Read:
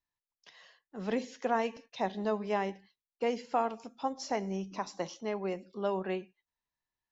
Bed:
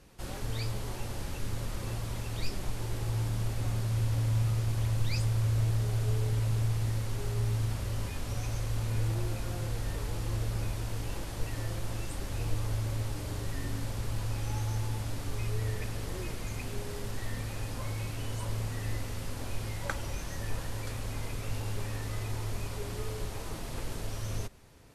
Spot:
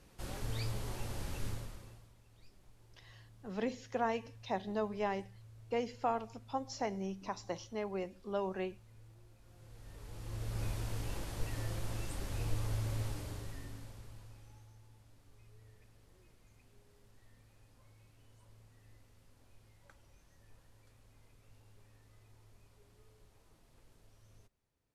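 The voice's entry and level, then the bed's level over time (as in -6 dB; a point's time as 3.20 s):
2.50 s, -4.0 dB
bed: 1.48 s -4 dB
2.15 s -28 dB
9.37 s -28 dB
10.65 s -4 dB
13.07 s -4 dB
14.76 s -27.5 dB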